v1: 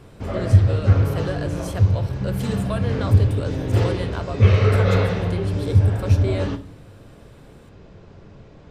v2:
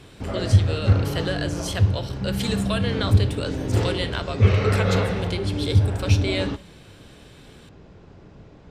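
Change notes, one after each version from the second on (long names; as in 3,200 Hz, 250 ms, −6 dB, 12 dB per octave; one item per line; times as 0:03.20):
speech: add meter weighting curve D
background: send off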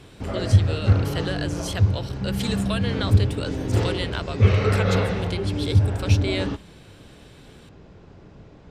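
reverb: off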